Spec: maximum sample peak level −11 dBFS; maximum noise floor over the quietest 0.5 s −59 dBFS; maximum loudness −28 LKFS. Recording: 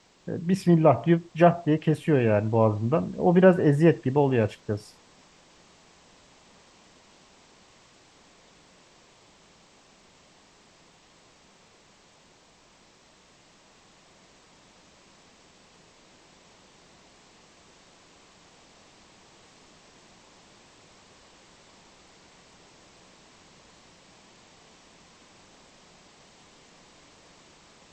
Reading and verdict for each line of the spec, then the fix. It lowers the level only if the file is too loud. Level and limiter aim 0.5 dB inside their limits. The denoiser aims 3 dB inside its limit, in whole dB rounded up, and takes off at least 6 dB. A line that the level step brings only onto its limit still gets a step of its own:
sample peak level −5.5 dBFS: out of spec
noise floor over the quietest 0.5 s −58 dBFS: out of spec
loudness −22.5 LKFS: out of spec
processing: level −6 dB

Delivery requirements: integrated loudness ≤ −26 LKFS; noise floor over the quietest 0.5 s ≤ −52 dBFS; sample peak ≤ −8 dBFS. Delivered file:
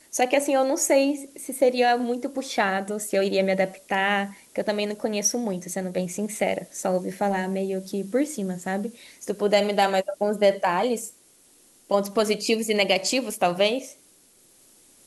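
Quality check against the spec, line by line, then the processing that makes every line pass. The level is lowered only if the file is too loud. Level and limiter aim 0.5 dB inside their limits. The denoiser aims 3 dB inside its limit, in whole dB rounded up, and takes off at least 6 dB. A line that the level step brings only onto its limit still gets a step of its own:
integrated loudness −24.5 LKFS: out of spec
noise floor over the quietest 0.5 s −57 dBFS: in spec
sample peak −6.5 dBFS: out of spec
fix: level −2 dB

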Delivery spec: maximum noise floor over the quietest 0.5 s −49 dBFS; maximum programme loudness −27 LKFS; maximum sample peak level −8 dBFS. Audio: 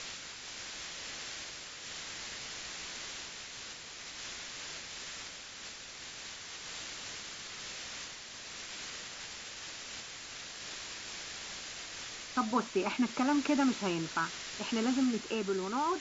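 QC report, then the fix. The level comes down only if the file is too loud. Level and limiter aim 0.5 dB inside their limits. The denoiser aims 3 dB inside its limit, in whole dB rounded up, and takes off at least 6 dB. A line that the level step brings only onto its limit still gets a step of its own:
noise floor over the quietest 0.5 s −47 dBFS: out of spec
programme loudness −37.0 LKFS: in spec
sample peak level −17.5 dBFS: in spec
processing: broadband denoise 6 dB, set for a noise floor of −47 dBFS

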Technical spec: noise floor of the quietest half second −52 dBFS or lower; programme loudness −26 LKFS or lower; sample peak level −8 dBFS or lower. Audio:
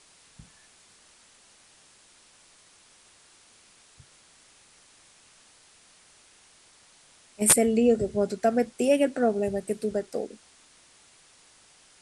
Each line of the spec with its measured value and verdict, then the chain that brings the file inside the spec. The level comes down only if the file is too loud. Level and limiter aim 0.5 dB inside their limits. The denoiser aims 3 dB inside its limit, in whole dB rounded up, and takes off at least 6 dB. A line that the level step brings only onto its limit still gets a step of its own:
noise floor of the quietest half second −58 dBFS: in spec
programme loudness −24.5 LKFS: out of spec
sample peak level −5.0 dBFS: out of spec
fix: level −2 dB
brickwall limiter −8.5 dBFS

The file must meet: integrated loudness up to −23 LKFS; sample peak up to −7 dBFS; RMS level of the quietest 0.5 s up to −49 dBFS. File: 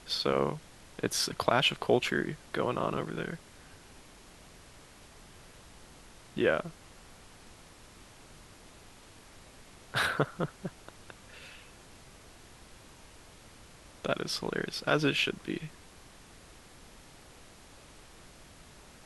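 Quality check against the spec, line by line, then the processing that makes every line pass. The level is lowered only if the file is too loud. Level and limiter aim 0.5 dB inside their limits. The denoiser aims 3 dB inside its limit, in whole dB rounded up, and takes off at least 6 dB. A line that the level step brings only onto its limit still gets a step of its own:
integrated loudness −31.0 LKFS: in spec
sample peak −8.5 dBFS: in spec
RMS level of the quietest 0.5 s −54 dBFS: in spec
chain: no processing needed

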